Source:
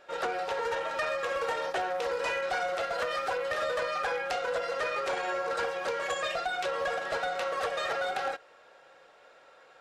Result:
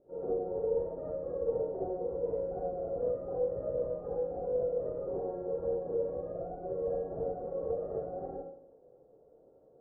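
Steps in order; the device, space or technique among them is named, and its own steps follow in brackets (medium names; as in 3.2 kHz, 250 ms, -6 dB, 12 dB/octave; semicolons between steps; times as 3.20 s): next room (low-pass 440 Hz 24 dB/octave; reverberation RT60 0.65 s, pre-delay 41 ms, DRR -5.5 dB)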